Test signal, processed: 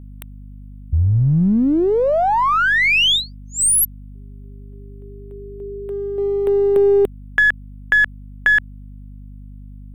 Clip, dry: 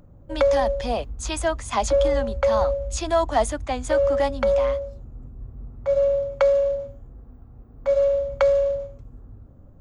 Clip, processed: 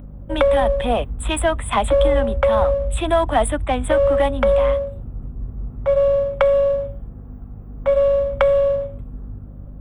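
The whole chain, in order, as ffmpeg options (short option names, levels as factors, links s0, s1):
-filter_complex "[0:a]asuperstop=centerf=5500:order=12:qfactor=1.3,acrossover=split=180|3000[s0][s1][s2];[s1]acompressor=threshold=0.0891:ratio=2.5[s3];[s0][s3][s2]amix=inputs=3:normalize=0,asplit=2[s4][s5];[s5]aeval=exprs='clip(val(0),-1,0.0266)':c=same,volume=0.355[s6];[s4][s6]amix=inputs=2:normalize=0,aeval=exprs='val(0)+0.01*(sin(2*PI*50*n/s)+sin(2*PI*2*50*n/s)/2+sin(2*PI*3*50*n/s)/3+sin(2*PI*4*50*n/s)/4+sin(2*PI*5*50*n/s)/5)':c=same,volume=1.68"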